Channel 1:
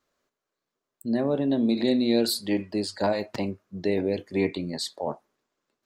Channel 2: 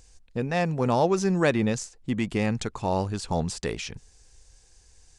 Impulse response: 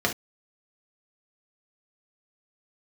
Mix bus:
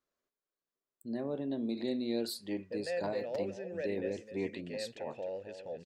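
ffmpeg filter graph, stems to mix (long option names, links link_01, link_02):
-filter_complex "[0:a]equalizer=frequency=390:width=1.5:gain=2.5,volume=-13dB[link_01];[1:a]alimiter=limit=-21.5dB:level=0:latency=1,asplit=3[link_02][link_03][link_04];[link_02]bandpass=frequency=530:width_type=q:width=8,volume=0dB[link_05];[link_03]bandpass=frequency=1840:width_type=q:width=8,volume=-6dB[link_06];[link_04]bandpass=frequency=2480:width_type=q:width=8,volume=-9dB[link_07];[link_05][link_06][link_07]amix=inputs=3:normalize=0,adelay=2350,volume=2dB,asplit=2[link_08][link_09];[link_09]volume=-10dB,aecho=0:1:261:1[link_10];[link_01][link_08][link_10]amix=inputs=3:normalize=0"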